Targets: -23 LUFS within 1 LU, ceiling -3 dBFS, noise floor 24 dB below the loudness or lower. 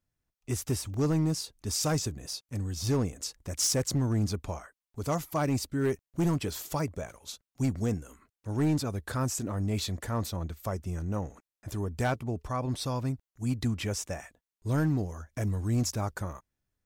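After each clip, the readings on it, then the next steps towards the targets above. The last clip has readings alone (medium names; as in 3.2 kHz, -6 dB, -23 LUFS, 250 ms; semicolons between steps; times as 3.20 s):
clipped samples 1.3%; clipping level -21.5 dBFS; dropouts 2; longest dropout 2.5 ms; loudness -31.5 LUFS; peak level -21.5 dBFS; loudness target -23.0 LUFS
-> clip repair -21.5 dBFS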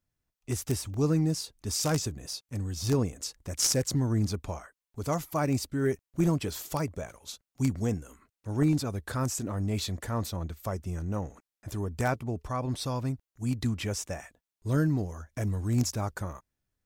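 clipped samples 0.0%; dropouts 2; longest dropout 2.5 ms
-> interpolate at 0.94/2.33 s, 2.5 ms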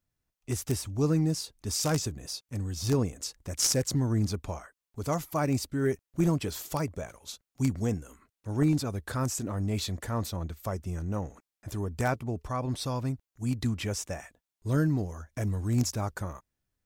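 dropouts 0; loudness -31.0 LUFS; peak level -12.5 dBFS; loudness target -23.0 LUFS
-> trim +8 dB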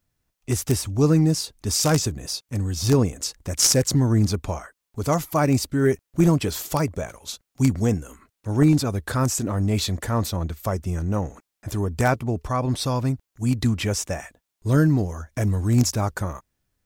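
loudness -23.0 LUFS; peak level -4.5 dBFS; noise floor -82 dBFS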